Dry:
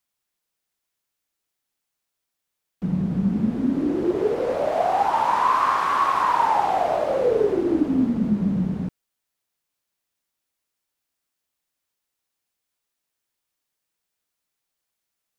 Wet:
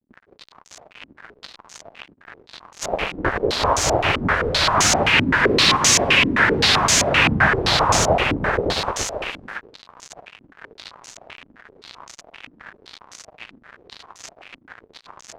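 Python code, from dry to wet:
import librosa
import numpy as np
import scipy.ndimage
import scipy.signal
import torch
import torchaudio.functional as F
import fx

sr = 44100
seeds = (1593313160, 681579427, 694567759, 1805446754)

y = x + 0.5 * 10.0 ** (-17.5 / 20.0) * np.diff(np.sign(x), prepend=np.sign(x[:1]))
y = fx.hum_notches(y, sr, base_hz=60, count=3)
y = fx.spec_gate(y, sr, threshold_db=-25, keep='weak')
y = fx.peak_eq(y, sr, hz=100.0, db=5.0, octaves=1.5)
y = y + 10.0 ** (-4.0 / 20.0) * np.pad(y, (int(682 * sr / 1000.0), 0))[:len(y)]
y = fx.fuzz(y, sr, gain_db=37.0, gate_db=-44.0)
y = fx.filter_held_lowpass(y, sr, hz=7.7, low_hz=270.0, high_hz=6500.0)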